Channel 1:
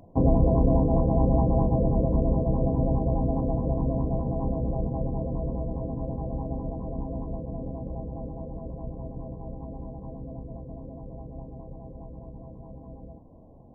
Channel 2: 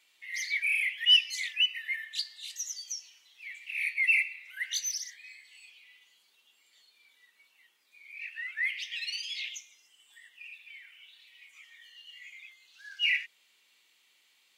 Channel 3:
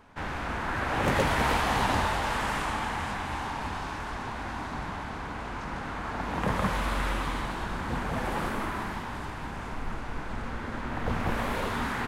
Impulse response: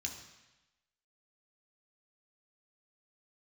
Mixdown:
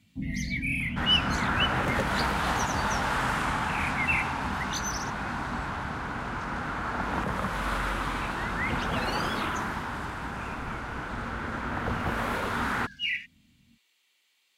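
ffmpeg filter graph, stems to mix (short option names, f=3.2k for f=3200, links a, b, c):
-filter_complex "[0:a]firequalizer=gain_entry='entry(120,0);entry(230,6);entry(400,-21)':delay=0.05:min_phase=1,flanger=delay=19:depth=6.6:speed=0.4,volume=-9dB[a];[1:a]volume=-3dB[b];[2:a]equalizer=f=1.4k:t=o:w=0.41:g=6,alimiter=limit=-18.5dB:level=0:latency=1:release=391,adelay=800,volume=1dB[c];[a][b][c]amix=inputs=3:normalize=0,highpass=45"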